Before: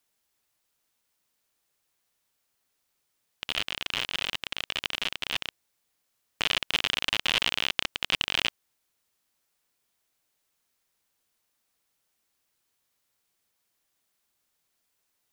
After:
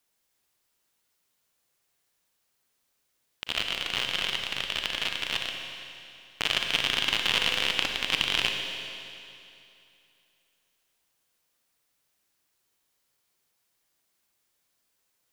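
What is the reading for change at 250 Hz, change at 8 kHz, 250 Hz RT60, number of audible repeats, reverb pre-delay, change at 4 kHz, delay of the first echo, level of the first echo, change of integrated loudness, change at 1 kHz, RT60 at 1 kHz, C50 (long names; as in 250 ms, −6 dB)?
+2.0 dB, +2.0 dB, 2.7 s, no echo audible, 35 ms, +2.0 dB, no echo audible, no echo audible, +1.0 dB, +1.5 dB, 2.7 s, 3.5 dB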